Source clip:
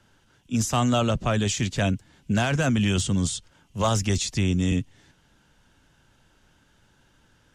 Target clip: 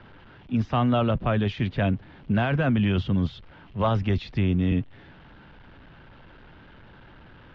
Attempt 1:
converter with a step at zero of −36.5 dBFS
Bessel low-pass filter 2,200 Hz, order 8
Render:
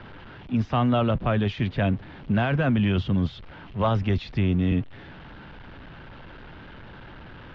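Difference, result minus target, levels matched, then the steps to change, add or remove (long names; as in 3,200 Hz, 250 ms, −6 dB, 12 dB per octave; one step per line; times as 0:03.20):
converter with a step at zero: distortion +7 dB
change: converter with a step at zero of −43.5 dBFS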